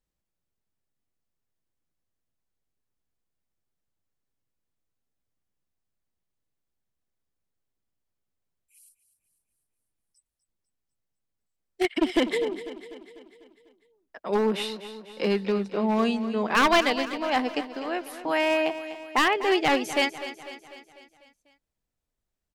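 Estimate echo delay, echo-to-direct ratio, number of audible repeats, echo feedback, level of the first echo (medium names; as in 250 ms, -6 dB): 248 ms, -11.5 dB, 5, 54%, -13.0 dB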